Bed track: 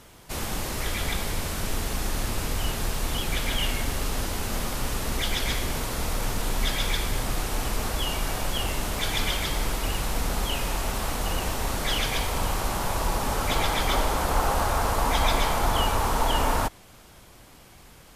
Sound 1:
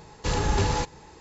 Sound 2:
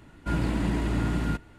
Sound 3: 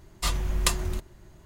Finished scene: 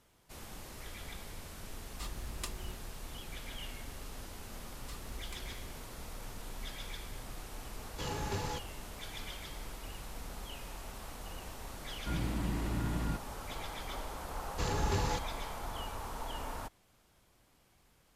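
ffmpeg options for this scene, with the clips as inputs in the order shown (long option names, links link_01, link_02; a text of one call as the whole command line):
ffmpeg -i bed.wav -i cue0.wav -i cue1.wav -i cue2.wav -filter_complex "[3:a]asplit=2[link_01][link_02];[1:a]asplit=2[link_03][link_04];[0:a]volume=-17.5dB[link_05];[link_02]acompressor=threshold=-38dB:ratio=6:attack=3.2:release=140:knee=1:detection=peak[link_06];[link_03]highpass=74[link_07];[2:a]acrossover=split=190|3000[link_08][link_09][link_10];[link_09]acompressor=threshold=-30dB:ratio=6:attack=3.2:release=140:knee=2.83:detection=peak[link_11];[link_08][link_11][link_10]amix=inputs=3:normalize=0[link_12];[link_01]atrim=end=1.45,asetpts=PTS-STARTPTS,volume=-17dB,afade=type=in:duration=0.004:curve=hsin,afade=type=out:start_time=1.446:duration=0.004:curve=hsin,adelay=1770[link_13];[link_06]atrim=end=1.45,asetpts=PTS-STARTPTS,volume=-9dB,afade=type=in:duration=0.004:curve=hsin,afade=type=out:start_time=1.446:duration=0.004:curve=hsin,adelay=4660[link_14];[link_07]atrim=end=1.2,asetpts=PTS-STARTPTS,volume=-12dB,afade=type=in:duration=0.004:curve=hsin,afade=type=out:start_time=1.196:duration=0.004:curve=hsin,adelay=7740[link_15];[link_12]atrim=end=1.58,asetpts=PTS-STARTPTS,volume=-7.5dB,afade=type=in:duration=0.004:curve=hsin,afade=type=out:start_time=1.576:duration=0.004:curve=hsin,adelay=11800[link_16];[link_04]atrim=end=1.2,asetpts=PTS-STARTPTS,volume=-8.5dB,afade=type=in:duration=0.004:curve=hsin,afade=type=out:start_time=1.196:duration=0.004:curve=hsin,adelay=14340[link_17];[link_05][link_13][link_14][link_15][link_16][link_17]amix=inputs=6:normalize=0" out.wav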